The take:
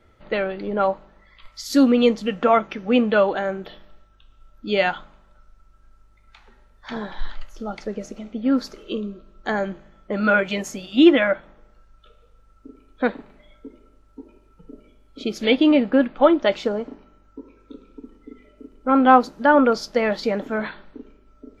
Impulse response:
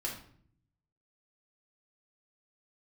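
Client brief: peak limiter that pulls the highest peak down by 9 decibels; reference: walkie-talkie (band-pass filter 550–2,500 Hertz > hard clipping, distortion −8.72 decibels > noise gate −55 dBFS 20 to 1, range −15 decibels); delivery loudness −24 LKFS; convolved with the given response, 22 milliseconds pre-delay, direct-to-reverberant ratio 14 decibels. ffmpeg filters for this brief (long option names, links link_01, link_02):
-filter_complex "[0:a]alimiter=limit=-10.5dB:level=0:latency=1,asplit=2[link_01][link_02];[1:a]atrim=start_sample=2205,adelay=22[link_03];[link_02][link_03]afir=irnorm=-1:irlink=0,volume=-16dB[link_04];[link_01][link_04]amix=inputs=2:normalize=0,highpass=550,lowpass=2500,asoftclip=type=hard:threshold=-23dB,agate=range=-15dB:threshold=-55dB:ratio=20,volume=6.5dB"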